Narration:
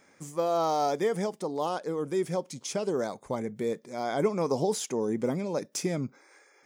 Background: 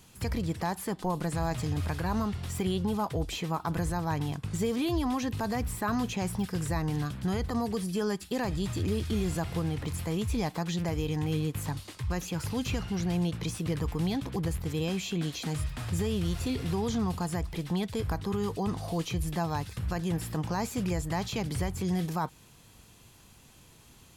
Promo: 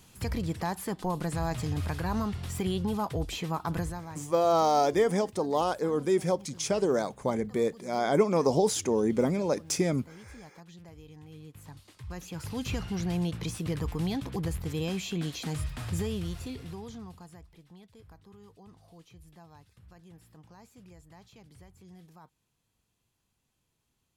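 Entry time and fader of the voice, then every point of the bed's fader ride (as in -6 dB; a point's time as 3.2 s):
3.95 s, +3.0 dB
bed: 3.79 s -0.5 dB
4.28 s -19 dB
11.3 s -19 dB
12.73 s -1 dB
15.98 s -1 dB
17.66 s -22.5 dB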